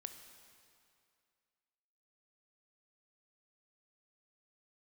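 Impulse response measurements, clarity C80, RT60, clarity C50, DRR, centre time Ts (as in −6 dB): 9.0 dB, 2.4 s, 8.0 dB, 7.0 dB, 33 ms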